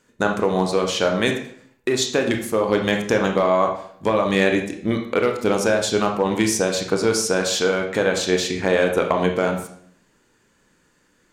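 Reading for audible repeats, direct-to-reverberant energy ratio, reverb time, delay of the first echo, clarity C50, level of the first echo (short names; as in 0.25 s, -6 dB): none, 3.0 dB, 0.60 s, none, 6.5 dB, none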